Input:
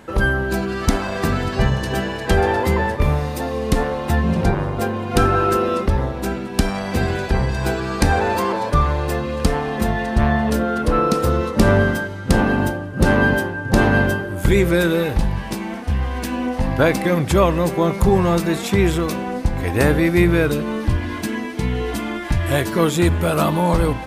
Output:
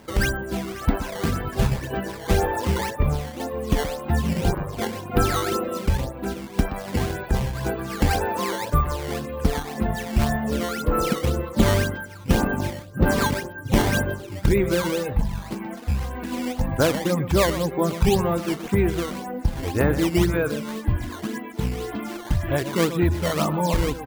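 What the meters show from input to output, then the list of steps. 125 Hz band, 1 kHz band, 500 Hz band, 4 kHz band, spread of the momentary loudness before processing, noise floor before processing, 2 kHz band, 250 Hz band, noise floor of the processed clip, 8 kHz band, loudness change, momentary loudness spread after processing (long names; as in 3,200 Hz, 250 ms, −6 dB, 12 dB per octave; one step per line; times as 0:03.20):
−4.5 dB, −6.0 dB, −5.5 dB, −2.5 dB, 7 LU, −29 dBFS, −7.5 dB, −5.0 dB, −37 dBFS, −1.5 dB, −5.0 dB, 9 LU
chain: reverb reduction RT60 0.94 s
high-frequency loss of the air 340 metres
single-tap delay 124 ms −11.5 dB
sample-and-hold swept by an LFO 10×, swing 160% 1.9 Hz
level −2.5 dB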